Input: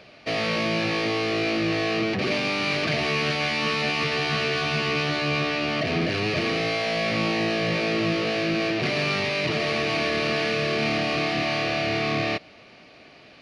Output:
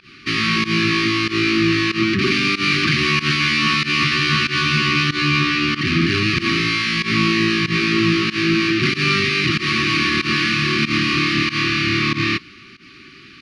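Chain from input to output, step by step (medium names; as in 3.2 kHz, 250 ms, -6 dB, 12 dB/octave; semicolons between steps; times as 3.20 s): FFT band-reject 400–1100 Hz; volume shaper 94 bpm, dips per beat 1, -20 dB, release 114 ms; trim +8.5 dB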